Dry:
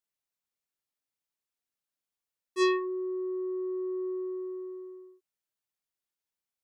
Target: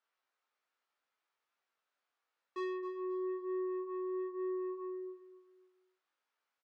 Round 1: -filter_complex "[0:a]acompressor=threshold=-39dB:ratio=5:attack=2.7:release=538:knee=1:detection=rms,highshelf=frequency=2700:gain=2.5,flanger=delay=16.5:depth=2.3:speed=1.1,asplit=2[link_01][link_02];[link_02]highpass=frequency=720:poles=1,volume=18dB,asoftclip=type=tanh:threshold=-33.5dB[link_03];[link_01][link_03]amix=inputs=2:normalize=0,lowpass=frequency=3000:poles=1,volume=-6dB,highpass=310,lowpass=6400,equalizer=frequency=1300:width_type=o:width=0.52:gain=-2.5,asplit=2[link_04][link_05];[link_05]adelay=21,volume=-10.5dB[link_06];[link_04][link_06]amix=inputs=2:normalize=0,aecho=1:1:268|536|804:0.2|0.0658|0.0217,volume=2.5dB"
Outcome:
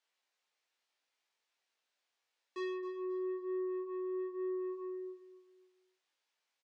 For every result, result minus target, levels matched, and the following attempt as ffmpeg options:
1,000 Hz band −3.5 dB; 4,000 Hz band +3.5 dB
-filter_complex "[0:a]acompressor=threshold=-39dB:ratio=5:attack=2.7:release=538:knee=1:detection=rms,highshelf=frequency=2700:gain=2.5,flanger=delay=16.5:depth=2.3:speed=1.1,asplit=2[link_01][link_02];[link_02]highpass=frequency=720:poles=1,volume=18dB,asoftclip=type=tanh:threshold=-33.5dB[link_03];[link_01][link_03]amix=inputs=2:normalize=0,lowpass=frequency=3000:poles=1,volume=-6dB,highpass=310,lowpass=6400,equalizer=frequency=1300:width_type=o:width=0.52:gain=5.5,asplit=2[link_04][link_05];[link_05]adelay=21,volume=-10.5dB[link_06];[link_04][link_06]amix=inputs=2:normalize=0,aecho=1:1:268|536|804:0.2|0.0658|0.0217,volume=2.5dB"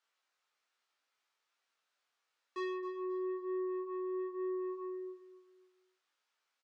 4,000 Hz band +3.5 dB
-filter_complex "[0:a]acompressor=threshold=-39dB:ratio=5:attack=2.7:release=538:knee=1:detection=rms,highshelf=frequency=2700:gain=-8.5,flanger=delay=16.5:depth=2.3:speed=1.1,asplit=2[link_01][link_02];[link_02]highpass=frequency=720:poles=1,volume=18dB,asoftclip=type=tanh:threshold=-33.5dB[link_03];[link_01][link_03]amix=inputs=2:normalize=0,lowpass=frequency=3000:poles=1,volume=-6dB,highpass=310,lowpass=6400,equalizer=frequency=1300:width_type=o:width=0.52:gain=5.5,asplit=2[link_04][link_05];[link_05]adelay=21,volume=-10.5dB[link_06];[link_04][link_06]amix=inputs=2:normalize=0,aecho=1:1:268|536|804:0.2|0.0658|0.0217,volume=2.5dB"

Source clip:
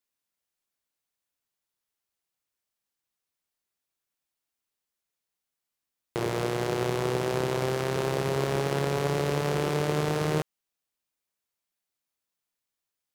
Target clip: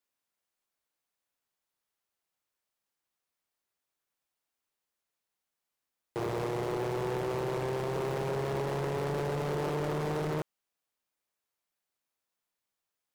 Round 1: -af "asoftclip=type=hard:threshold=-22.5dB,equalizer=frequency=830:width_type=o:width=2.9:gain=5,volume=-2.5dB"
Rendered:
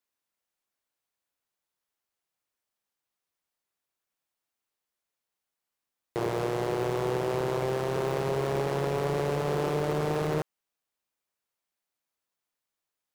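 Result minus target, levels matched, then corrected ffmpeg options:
hard clipping: distortion −6 dB
-af "asoftclip=type=hard:threshold=-29.5dB,equalizer=frequency=830:width_type=o:width=2.9:gain=5,volume=-2.5dB"

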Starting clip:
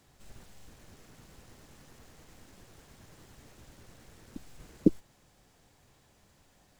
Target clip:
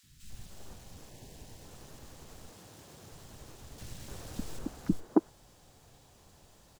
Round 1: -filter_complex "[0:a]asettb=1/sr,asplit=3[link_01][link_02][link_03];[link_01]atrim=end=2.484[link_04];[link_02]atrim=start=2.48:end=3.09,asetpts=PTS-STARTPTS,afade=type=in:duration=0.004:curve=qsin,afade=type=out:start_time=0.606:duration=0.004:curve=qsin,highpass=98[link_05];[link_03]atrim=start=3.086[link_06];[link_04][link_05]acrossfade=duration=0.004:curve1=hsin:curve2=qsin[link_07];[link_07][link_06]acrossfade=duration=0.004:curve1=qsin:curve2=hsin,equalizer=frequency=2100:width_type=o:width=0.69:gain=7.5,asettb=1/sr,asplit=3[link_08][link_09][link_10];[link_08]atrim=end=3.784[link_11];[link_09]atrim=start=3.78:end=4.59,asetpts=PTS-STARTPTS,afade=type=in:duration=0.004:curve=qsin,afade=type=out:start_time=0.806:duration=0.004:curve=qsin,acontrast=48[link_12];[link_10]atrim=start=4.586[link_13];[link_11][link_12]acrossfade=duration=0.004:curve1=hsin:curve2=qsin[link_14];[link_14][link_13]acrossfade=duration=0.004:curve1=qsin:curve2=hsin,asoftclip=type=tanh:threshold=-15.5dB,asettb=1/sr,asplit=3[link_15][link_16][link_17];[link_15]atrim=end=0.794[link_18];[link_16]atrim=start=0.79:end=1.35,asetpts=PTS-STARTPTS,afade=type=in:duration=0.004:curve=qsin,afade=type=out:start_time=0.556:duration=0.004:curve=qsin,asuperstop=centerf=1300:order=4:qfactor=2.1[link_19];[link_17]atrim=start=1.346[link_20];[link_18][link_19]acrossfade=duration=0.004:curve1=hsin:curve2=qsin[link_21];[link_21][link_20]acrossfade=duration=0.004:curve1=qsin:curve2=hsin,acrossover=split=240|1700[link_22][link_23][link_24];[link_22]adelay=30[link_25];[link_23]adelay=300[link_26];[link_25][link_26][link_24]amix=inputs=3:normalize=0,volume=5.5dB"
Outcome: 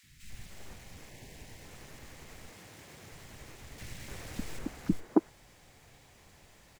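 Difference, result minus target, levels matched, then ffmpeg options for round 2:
2,000 Hz band +10.5 dB
-filter_complex "[0:a]asettb=1/sr,asplit=3[link_01][link_02][link_03];[link_01]atrim=end=2.484[link_04];[link_02]atrim=start=2.48:end=3.09,asetpts=PTS-STARTPTS,afade=type=in:duration=0.004:curve=qsin,afade=type=out:start_time=0.606:duration=0.004:curve=qsin,highpass=98[link_05];[link_03]atrim=start=3.086[link_06];[link_04][link_05]acrossfade=duration=0.004:curve1=hsin:curve2=qsin[link_07];[link_07][link_06]acrossfade=duration=0.004:curve1=qsin:curve2=hsin,equalizer=frequency=2100:width_type=o:width=0.69:gain=-3.5,asettb=1/sr,asplit=3[link_08][link_09][link_10];[link_08]atrim=end=3.784[link_11];[link_09]atrim=start=3.78:end=4.59,asetpts=PTS-STARTPTS,afade=type=in:duration=0.004:curve=qsin,afade=type=out:start_time=0.806:duration=0.004:curve=qsin,acontrast=48[link_12];[link_10]atrim=start=4.586[link_13];[link_11][link_12]acrossfade=duration=0.004:curve1=hsin:curve2=qsin[link_14];[link_14][link_13]acrossfade=duration=0.004:curve1=qsin:curve2=hsin,asoftclip=type=tanh:threshold=-15.5dB,asettb=1/sr,asplit=3[link_15][link_16][link_17];[link_15]atrim=end=0.794[link_18];[link_16]atrim=start=0.79:end=1.35,asetpts=PTS-STARTPTS,afade=type=in:duration=0.004:curve=qsin,afade=type=out:start_time=0.556:duration=0.004:curve=qsin,asuperstop=centerf=1300:order=4:qfactor=2.1[link_19];[link_17]atrim=start=1.346[link_20];[link_18][link_19]acrossfade=duration=0.004:curve1=hsin:curve2=qsin[link_21];[link_21][link_20]acrossfade=duration=0.004:curve1=qsin:curve2=hsin,acrossover=split=240|1700[link_22][link_23][link_24];[link_22]adelay=30[link_25];[link_23]adelay=300[link_26];[link_25][link_26][link_24]amix=inputs=3:normalize=0,volume=5.5dB"

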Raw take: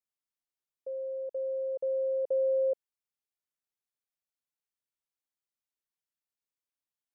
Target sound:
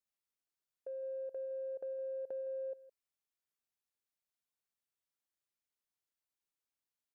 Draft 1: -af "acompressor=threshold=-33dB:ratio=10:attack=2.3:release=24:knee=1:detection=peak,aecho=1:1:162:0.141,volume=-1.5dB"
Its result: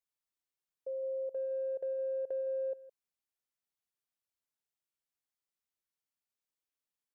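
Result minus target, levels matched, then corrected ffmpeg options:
downward compressor: peak gain reduction −5.5 dB
-af "acompressor=threshold=-39dB:ratio=10:attack=2.3:release=24:knee=1:detection=peak,aecho=1:1:162:0.141,volume=-1.5dB"

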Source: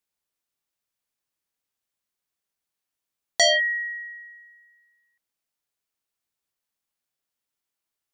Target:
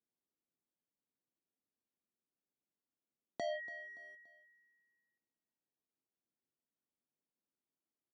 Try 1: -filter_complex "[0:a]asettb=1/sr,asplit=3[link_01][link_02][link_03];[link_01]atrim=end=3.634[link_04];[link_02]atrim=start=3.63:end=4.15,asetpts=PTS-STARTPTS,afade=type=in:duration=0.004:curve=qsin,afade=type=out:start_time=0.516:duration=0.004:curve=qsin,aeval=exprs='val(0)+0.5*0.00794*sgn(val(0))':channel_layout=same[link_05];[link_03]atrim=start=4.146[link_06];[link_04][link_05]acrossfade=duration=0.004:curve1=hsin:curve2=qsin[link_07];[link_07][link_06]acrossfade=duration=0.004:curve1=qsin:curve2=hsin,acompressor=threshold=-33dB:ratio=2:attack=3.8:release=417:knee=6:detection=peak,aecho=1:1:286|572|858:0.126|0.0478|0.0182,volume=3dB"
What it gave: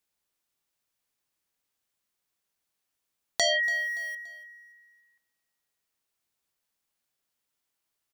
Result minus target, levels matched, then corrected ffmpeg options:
250 Hz band −16.0 dB
-filter_complex "[0:a]asettb=1/sr,asplit=3[link_01][link_02][link_03];[link_01]atrim=end=3.634[link_04];[link_02]atrim=start=3.63:end=4.15,asetpts=PTS-STARTPTS,afade=type=in:duration=0.004:curve=qsin,afade=type=out:start_time=0.516:duration=0.004:curve=qsin,aeval=exprs='val(0)+0.5*0.00794*sgn(val(0))':channel_layout=same[link_05];[link_03]atrim=start=4.146[link_06];[link_04][link_05]acrossfade=duration=0.004:curve1=hsin:curve2=qsin[link_07];[link_07][link_06]acrossfade=duration=0.004:curve1=qsin:curve2=hsin,acompressor=threshold=-33dB:ratio=2:attack=3.8:release=417:knee=6:detection=peak,bandpass=frequency=260:width_type=q:width=1.4:csg=0,aecho=1:1:286|572|858:0.126|0.0478|0.0182,volume=3dB"

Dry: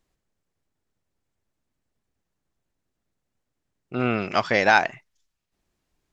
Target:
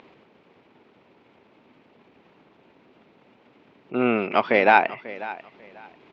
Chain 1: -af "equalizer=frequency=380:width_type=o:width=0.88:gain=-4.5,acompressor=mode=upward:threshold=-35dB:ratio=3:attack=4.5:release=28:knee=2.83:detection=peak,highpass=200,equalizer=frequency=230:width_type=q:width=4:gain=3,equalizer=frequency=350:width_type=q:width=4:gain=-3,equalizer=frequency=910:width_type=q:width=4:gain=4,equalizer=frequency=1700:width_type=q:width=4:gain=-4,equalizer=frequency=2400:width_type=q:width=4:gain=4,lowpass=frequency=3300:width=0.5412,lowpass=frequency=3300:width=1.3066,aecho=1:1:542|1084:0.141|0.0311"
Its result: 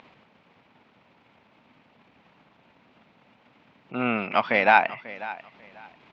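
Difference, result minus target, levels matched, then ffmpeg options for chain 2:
500 Hz band −3.0 dB
-af "equalizer=frequency=380:width_type=o:width=0.88:gain=7,acompressor=mode=upward:threshold=-35dB:ratio=3:attack=4.5:release=28:knee=2.83:detection=peak,highpass=200,equalizer=frequency=230:width_type=q:width=4:gain=3,equalizer=frequency=350:width_type=q:width=4:gain=-3,equalizer=frequency=910:width_type=q:width=4:gain=4,equalizer=frequency=1700:width_type=q:width=4:gain=-4,equalizer=frequency=2400:width_type=q:width=4:gain=4,lowpass=frequency=3300:width=0.5412,lowpass=frequency=3300:width=1.3066,aecho=1:1:542|1084:0.141|0.0311"

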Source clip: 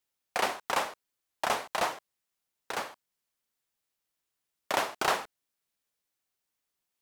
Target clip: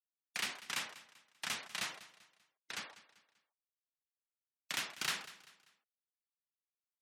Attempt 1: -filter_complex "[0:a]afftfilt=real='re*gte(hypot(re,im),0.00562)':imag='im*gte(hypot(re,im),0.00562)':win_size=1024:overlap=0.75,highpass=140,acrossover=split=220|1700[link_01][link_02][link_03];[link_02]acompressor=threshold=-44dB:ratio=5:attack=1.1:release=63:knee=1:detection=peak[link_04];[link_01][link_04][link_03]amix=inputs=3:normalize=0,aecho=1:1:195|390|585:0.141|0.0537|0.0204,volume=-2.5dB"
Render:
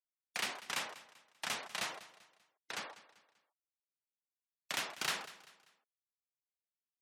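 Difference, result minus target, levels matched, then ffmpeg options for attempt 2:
downward compressor: peak gain reduction −9 dB
-filter_complex "[0:a]afftfilt=real='re*gte(hypot(re,im),0.00562)':imag='im*gte(hypot(re,im),0.00562)':win_size=1024:overlap=0.75,highpass=140,acrossover=split=220|1700[link_01][link_02][link_03];[link_02]acompressor=threshold=-55dB:ratio=5:attack=1.1:release=63:knee=1:detection=peak[link_04];[link_01][link_04][link_03]amix=inputs=3:normalize=0,aecho=1:1:195|390|585:0.141|0.0537|0.0204,volume=-2.5dB"

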